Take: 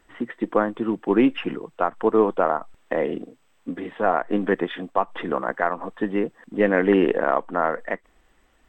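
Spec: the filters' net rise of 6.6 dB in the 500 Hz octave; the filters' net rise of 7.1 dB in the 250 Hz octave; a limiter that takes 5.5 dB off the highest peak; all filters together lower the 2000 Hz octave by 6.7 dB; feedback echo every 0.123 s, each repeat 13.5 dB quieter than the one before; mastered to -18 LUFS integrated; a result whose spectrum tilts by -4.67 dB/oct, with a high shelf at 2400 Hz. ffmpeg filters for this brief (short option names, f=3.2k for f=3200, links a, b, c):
-af "equalizer=f=250:t=o:g=7,equalizer=f=500:t=o:g=6.5,equalizer=f=2k:t=o:g=-7.5,highshelf=f=2.4k:g=-5,alimiter=limit=-5.5dB:level=0:latency=1,aecho=1:1:123|246:0.211|0.0444,volume=1.5dB"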